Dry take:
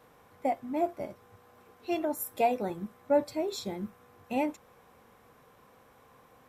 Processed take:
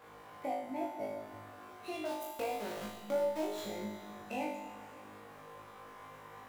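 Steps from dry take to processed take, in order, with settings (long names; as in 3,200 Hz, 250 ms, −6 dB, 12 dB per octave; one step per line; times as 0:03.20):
running median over 9 samples
0:02.05–0:03.45: centre clipping without the shift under −36.5 dBFS
downward compressor 3 to 1, threshold −44 dBFS, peak gain reduction 17.5 dB
low-shelf EQ 440 Hz −9 dB
on a send: flutter between parallel walls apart 3.3 metres, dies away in 0.66 s
on the sum: four-comb reverb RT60 2.5 s, combs from 26 ms, DRR 5.5 dB
level +4.5 dB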